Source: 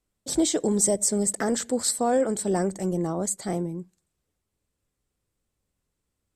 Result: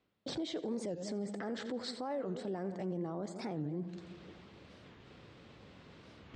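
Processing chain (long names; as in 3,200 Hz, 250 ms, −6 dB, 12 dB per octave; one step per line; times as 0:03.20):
reversed playback
upward compression, threshold −32 dBFS
reversed playback
low-pass filter 4,000 Hz 24 dB per octave
on a send: echo with a time of its own for lows and highs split 480 Hz, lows 161 ms, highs 86 ms, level −15.5 dB
on the sum: downward compressor 2 to 1, threshold −41 dBFS, peak gain reduction 12.5 dB
high-pass filter 120 Hz 12 dB per octave
brickwall limiter −32.5 dBFS, peak gain reduction 11 dB
wow of a warped record 45 rpm, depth 250 cents
level +2.5 dB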